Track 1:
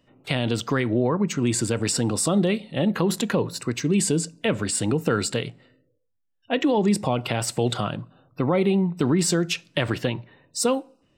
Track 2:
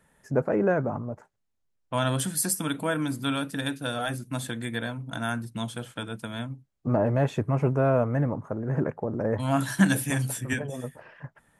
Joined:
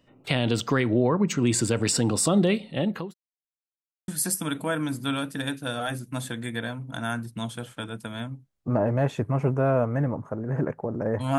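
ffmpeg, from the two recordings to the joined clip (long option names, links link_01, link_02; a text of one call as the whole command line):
ffmpeg -i cue0.wav -i cue1.wav -filter_complex "[0:a]apad=whole_dur=11.38,atrim=end=11.38,asplit=2[link_01][link_02];[link_01]atrim=end=3.14,asetpts=PTS-STARTPTS,afade=type=out:start_time=2.5:duration=0.64:curve=qsin[link_03];[link_02]atrim=start=3.14:end=4.08,asetpts=PTS-STARTPTS,volume=0[link_04];[1:a]atrim=start=2.27:end=9.57,asetpts=PTS-STARTPTS,afade=type=in:duration=0.004:curve=hsin[link_05];[link_03][link_04][link_05]concat=n=3:v=0:a=1" out.wav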